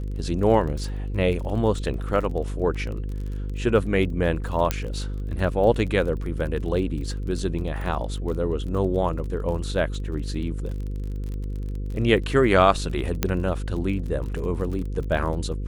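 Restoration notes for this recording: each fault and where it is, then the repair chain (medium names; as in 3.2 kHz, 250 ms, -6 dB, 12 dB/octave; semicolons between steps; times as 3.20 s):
buzz 50 Hz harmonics 10 -29 dBFS
crackle 32 per s -32 dBFS
4.71 s: pop -7 dBFS
13.23 s: pop -6 dBFS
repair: de-click; de-hum 50 Hz, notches 10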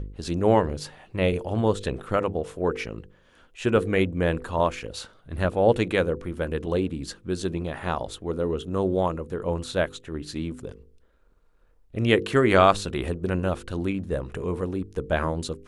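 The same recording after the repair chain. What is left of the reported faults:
nothing left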